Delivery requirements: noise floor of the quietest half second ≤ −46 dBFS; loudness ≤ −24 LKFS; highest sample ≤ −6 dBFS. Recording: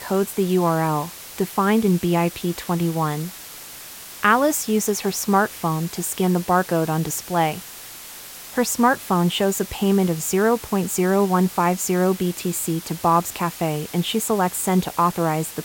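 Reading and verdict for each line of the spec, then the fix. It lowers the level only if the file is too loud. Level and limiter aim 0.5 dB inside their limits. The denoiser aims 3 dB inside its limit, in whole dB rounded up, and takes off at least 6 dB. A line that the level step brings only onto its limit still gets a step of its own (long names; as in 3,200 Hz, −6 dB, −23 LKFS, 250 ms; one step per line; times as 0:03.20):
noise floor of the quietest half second −38 dBFS: out of spec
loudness −21.0 LKFS: out of spec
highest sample −3.0 dBFS: out of spec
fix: broadband denoise 8 dB, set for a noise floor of −38 dBFS
level −3.5 dB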